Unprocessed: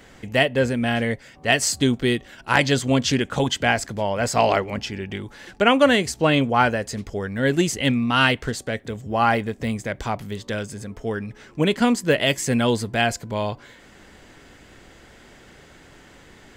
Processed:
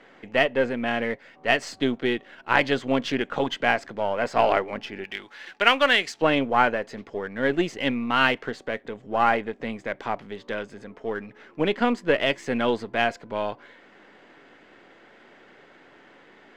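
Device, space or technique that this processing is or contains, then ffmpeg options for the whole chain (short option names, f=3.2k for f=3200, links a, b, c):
crystal radio: -filter_complex "[0:a]highpass=280,lowpass=2.7k,aeval=exprs='if(lt(val(0),0),0.708*val(0),val(0))':c=same,asettb=1/sr,asplit=3[a][b][c];[a]atrim=end=5.044[d];[b]atrim=start=5.04:end=6.22,asetpts=PTS-STARTPTS,afade=t=in:d=0.004:c=qsin,afade=t=out:st=1.176:d=0.004:c=qsin,tiltshelf=f=1.1k:g=-9[e];[c]atrim=start=6.216[f];[d][e]acrossfade=d=0.004:c1=hsin:c2=qsin[g];[g][f]acrossfade=d=0.004:c1=qsin:c2=hsin"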